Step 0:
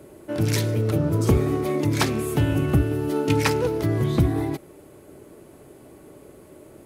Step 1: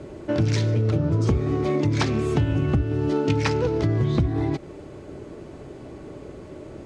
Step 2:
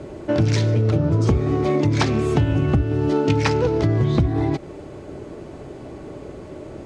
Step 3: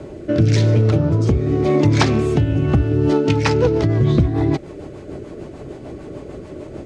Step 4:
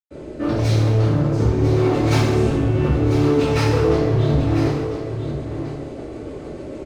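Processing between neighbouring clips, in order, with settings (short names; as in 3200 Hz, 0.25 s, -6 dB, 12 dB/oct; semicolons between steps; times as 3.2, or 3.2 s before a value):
LPF 6500 Hz 24 dB/oct; low shelf 130 Hz +7.5 dB; compressor 4:1, threshold -26 dBFS, peak gain reduction 14 dB; gain +6 dB
bell 740 Hz +2.5 dB; gain +3 dB
rotary speaker horn 0.9 Hz, later 6.7 Hz, at 2.55; gain +4.5 dB
hard clip -16 dBFS, distortion -9 dB; echo 0.997 s -10 dB; reverb RT60 1.0 s, pre-delay 0.105 s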